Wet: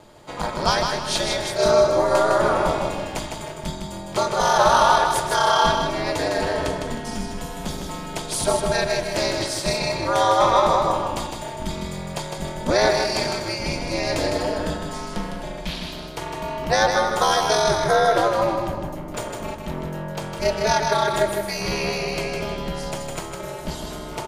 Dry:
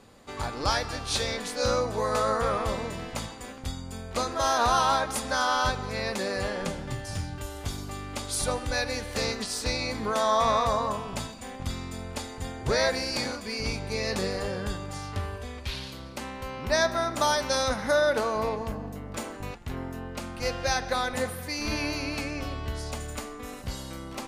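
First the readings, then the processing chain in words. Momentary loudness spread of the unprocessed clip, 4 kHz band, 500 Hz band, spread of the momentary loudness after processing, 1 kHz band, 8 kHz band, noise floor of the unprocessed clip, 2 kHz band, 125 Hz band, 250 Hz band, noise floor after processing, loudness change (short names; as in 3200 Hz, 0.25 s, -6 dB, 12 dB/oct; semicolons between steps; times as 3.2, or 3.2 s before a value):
13 LU, +5.5 dB, +8.0 dB, 14 LU, +8.0 dB, +5.0 dB, -41 dBFS, +5.0 dB, +4.0 dB, +6.0 dB, -34 dBFS, +7.0 dB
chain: ring modulator 110 Hz; small resonant body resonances 610/880/3200 Hz, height 9 dB, ringing for 45 ms; on a send: feedback echo 0.156 s, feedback 33%, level -5 dB; on the sum: gain +6.5 dB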